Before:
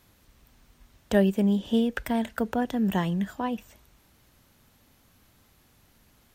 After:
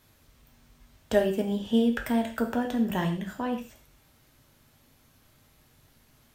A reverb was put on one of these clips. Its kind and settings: gated-style reverb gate 160 ms falling, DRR 2.5 dB; trim -2 dB

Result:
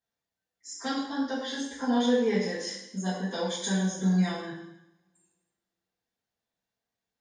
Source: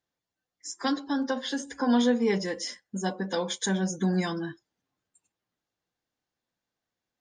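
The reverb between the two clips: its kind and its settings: two-slope reverb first 0.79 s, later 2 s, from -27 dB, DRR -8 dB; trim -10 dB

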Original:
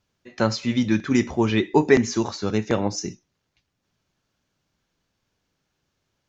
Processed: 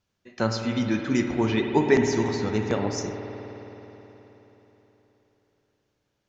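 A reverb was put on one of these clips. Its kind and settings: spring tank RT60 3.9 s, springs 53 ms, chirp 60 ms, DRR 3.5 dB; trim -4 dB

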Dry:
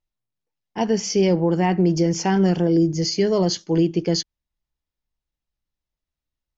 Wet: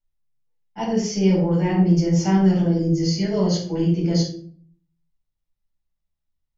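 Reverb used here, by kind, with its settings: simulated room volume 540 m³, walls furnished, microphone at 7.4 m; trim -12.5 dB

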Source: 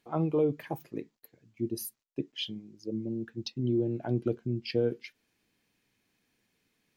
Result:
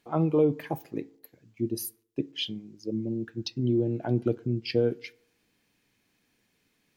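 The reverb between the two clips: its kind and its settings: FDN reverb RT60 0.72 s, low-frequency decay 0.8×, high-frequency decay 0.45×, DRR 20 dB; trim +3.5 dB

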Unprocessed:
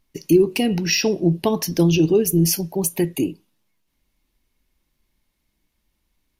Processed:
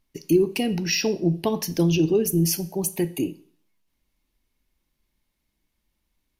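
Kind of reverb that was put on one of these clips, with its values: Schroeder reverb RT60 0.52 s, combs from 28 ms, DRR 16.5 dB; trim -4 dB

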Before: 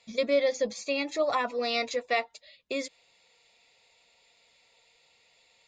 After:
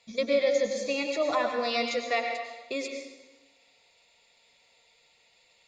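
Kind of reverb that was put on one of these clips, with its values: plate-style reverb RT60 1.1 s, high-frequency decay 0.85×, pre-delay 85 ms, DRR 3.5 dB; trim -1 dB

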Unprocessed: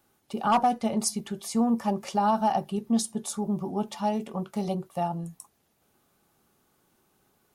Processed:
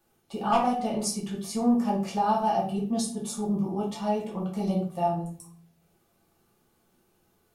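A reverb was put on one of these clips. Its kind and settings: simulated room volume 43 m³, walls mixed, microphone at 1 m; trim -6 dB

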